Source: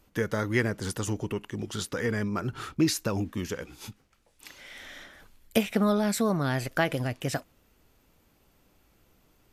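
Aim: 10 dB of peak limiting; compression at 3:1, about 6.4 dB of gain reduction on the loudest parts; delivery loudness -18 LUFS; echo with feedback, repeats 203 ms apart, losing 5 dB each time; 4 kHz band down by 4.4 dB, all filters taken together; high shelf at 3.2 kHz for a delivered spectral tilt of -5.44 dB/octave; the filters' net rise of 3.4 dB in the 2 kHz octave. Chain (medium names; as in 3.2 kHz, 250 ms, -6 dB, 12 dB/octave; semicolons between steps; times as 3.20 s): peaking EQ 2 kHz +6.5 dB; treble shelf 3.2 kHz -5.5 dB; peaking EQ 4 kHz -4 dB; compression 3:1, threshold -27 dBFS; peak limiter -25.5 dBFS; feedback delay 203 ms, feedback 56%, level -5 dB; trim +17 dB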